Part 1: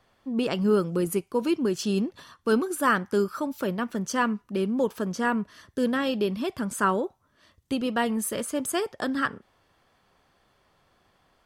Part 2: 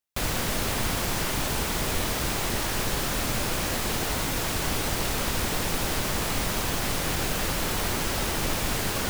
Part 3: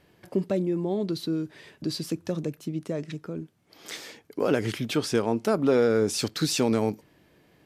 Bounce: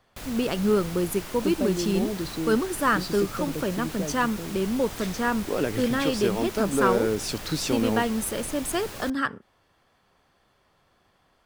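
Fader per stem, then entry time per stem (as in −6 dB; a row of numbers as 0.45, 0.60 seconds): 0.0, −11.0, −2.5 decibels; 0.00, 0.00, 1.10 seconds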